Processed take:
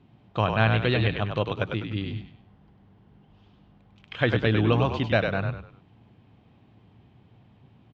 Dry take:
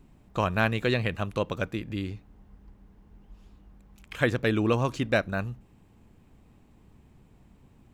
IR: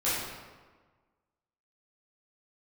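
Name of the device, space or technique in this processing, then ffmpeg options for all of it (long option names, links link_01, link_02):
frequency-shifting delay pedal into a guitar cabinet: -filter_complex "[0:a]asplit=5[link_01][link_02][link_03][link_04][link_05];[link_02]adelay=99,afreqshift=-48,volume=-5dB[link_06];[link_03]adelay=198,afreqshift=-96,volume=-13.9dB[link_07];[link_04]adelay=297,afreqshift=-144,volume=-22.7dB[link_08];[link_05]adelay=396,afreqshift=-192,volume=-31.6dB[link_09];[link_01][link_06][link_07][link_08][link_09]amix=inputs=5:normalize=0,highpass=100,equalizer=frequency=110:width_type=q:width=4:gain=10,equalizer=frequency=740:width_type=q:width=4:gain=4,equalizer=frequency=3200:width_type=q:width=4:gain=6,lowpass=frequency=4500:width=0.5412,lowpass=frequency=4500:width=1.3066"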